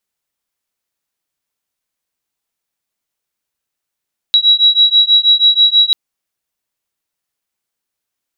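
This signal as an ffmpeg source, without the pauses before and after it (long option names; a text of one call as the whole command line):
ffmpeg -f lavfi -i "aevalsrc='0.316*(sin(2*PI*3880*t)+sin(2*PI*3886.2*t))':duration=1.59:sample_rate=44100" out.wav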